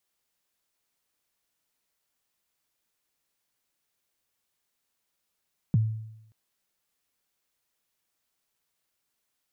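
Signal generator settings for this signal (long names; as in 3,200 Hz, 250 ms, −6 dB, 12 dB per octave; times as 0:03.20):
synth kick length 0.58 s, from 200 Hz, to 110 Hz, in 22 ms, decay 0.84 s, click off, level −16.5 dB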